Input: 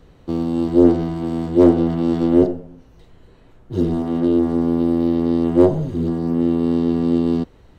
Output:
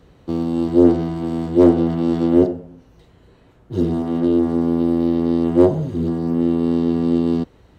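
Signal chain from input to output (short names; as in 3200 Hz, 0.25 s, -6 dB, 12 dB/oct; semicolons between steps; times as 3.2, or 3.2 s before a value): HPF 48 Hz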